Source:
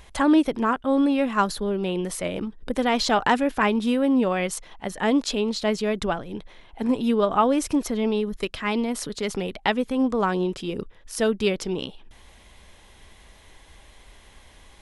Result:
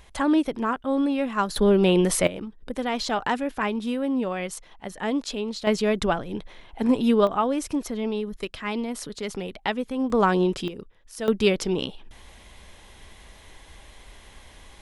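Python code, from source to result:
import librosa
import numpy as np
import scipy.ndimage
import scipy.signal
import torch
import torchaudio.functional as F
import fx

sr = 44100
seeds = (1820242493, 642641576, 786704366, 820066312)

y = fx.gain(x, sr, db=fx.steps((0.0, -3.0), (1.56, 7.5), (2.27, -5.0), (5.67, 2.0), (7.27, -4.0), (10.1, 3.0), (10.68, -8.0), (11.28, 2.5)))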